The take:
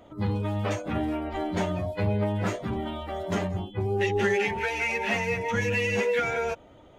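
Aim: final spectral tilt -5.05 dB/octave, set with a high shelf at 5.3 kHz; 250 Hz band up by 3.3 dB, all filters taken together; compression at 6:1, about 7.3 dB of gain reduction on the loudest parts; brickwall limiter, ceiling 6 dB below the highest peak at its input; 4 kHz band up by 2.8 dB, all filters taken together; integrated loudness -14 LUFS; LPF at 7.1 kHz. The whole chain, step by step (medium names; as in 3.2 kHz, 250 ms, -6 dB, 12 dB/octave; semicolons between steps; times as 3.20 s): low-pass 7.1 kHz; peaking EQ 250 Hz +4.5 dB; peaking EQ 4 kHz +7.5 dB; treble shelf 5.3 kHz -8 dB; compression 6:1, threshold -28 dBFS; trim +20 dB; peak limiter -6 dBFS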